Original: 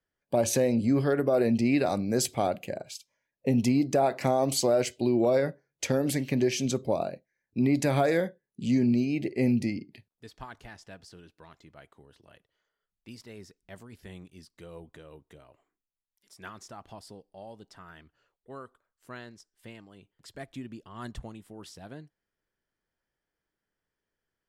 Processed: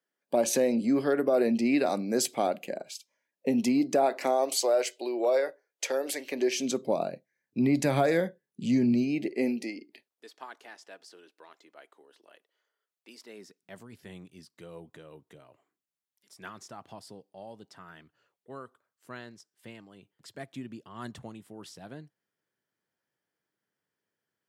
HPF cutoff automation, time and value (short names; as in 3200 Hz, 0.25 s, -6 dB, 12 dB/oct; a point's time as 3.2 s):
HPF 24 dB/oct
3.94 s 200 Hz
4.56 s 410 Hz
6.18 s 410 Hz
7.12 s 130 Hz
8.98 s 130 Hz
9.63 s 320 Hz
13.14 s 320 Hz
13.84 s 110 Hz